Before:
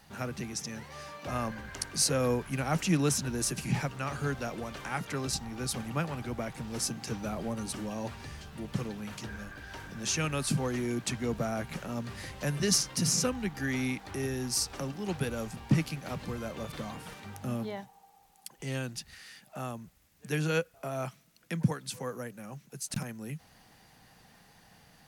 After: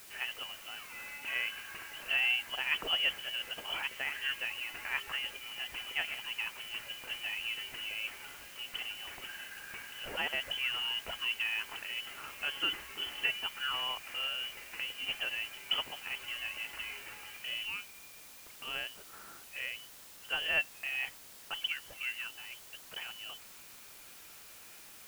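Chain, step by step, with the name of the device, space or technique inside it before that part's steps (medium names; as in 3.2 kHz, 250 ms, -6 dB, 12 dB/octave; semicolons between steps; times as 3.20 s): scrambled radio voice (band-pass 300–2800 Hz; frequency inversion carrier 3.2 kHz; white noise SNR 14 dB)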